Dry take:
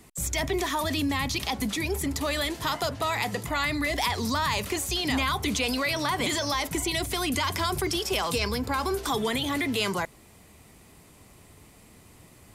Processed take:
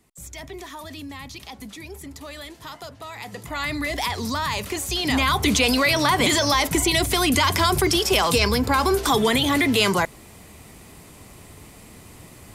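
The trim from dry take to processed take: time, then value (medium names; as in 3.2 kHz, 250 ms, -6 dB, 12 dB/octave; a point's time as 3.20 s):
3.13 s -9.5 dB
3.69 s +1 dB
4.73 s +1 dB
5.47 s +8 dB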